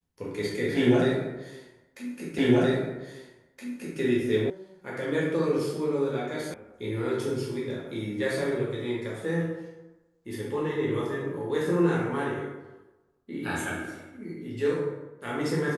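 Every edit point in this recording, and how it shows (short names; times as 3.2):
2.38 repeat of the last 1.62 s
4.5 sound cut off
6.54 sound cut off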